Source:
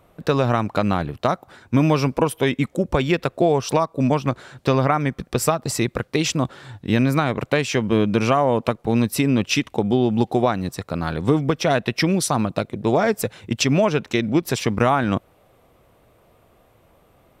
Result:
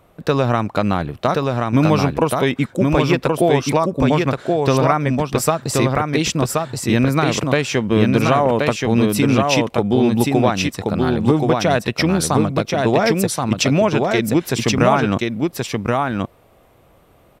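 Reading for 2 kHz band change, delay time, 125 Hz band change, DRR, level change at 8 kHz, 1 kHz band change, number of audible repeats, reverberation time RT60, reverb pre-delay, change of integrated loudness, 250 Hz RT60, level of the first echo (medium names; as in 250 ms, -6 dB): +3.5 dB, 1077 ms, +4.0 dB, no reverb, +4.0 dB, +3.5 dB, 1, no reverb, no reverb, +3.5 dB, no reverb, -3.0 dB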